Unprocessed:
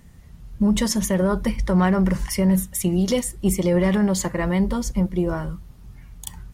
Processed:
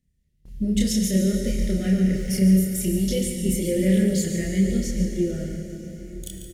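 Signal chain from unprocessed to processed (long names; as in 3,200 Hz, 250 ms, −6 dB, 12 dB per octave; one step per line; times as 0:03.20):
0:01.24–0:02.29: running median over 3 samples
Butterworth band-reject 1,000 Hz, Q 0.61
dense smooth reverb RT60 4.6 s, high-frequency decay 0.85×, DRR 3 dB
noise gate with hold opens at −32 dBFS
single-tap delay 143 ms −10.5 dB
multi-voice chorus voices 2, 0.63 Hz, delay 29 ms, depth 3 ms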